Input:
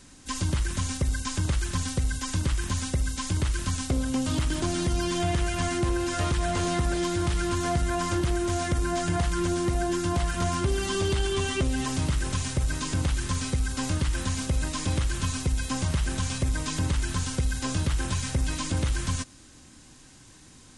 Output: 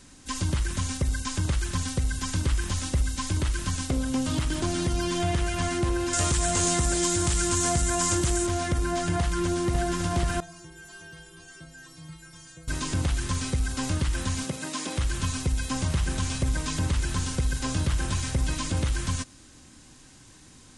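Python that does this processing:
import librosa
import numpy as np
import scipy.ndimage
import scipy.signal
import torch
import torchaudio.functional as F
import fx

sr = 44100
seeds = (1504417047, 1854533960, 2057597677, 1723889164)

y = fx.echo_throw(x, sr, start_s=1.69, length_s=0.84, ms=480, feedback_pct=75, wet_db=-10.0)
y = fx.peak_eq(y, sr, hz=7600.0, db=14.5, octaves=1.0, at=(6.13, 8.47))
y = fx.echo_throw(y, sr, start_s=9.19, length_s=0.7, ms=550, feedback_pct=65, wet_db=-5.5)
y = fx.stiff_resonator(y, sr, f0_hz=160.0, decay_s=0.73, stiffness=0.008, at=(10.4, 12.68))
y = fx.highpass(y, sr, hz=fx.line((14.43, 120.0), (14.97, 260.0)), slope=24, at=(14.43, 14.97), fade=0.02)
y = fx.echo_alternate(y, sr, ms=140, hz=830.0, feedback_pct=61, wet_db=-10.5, at=(15.62, 18.81))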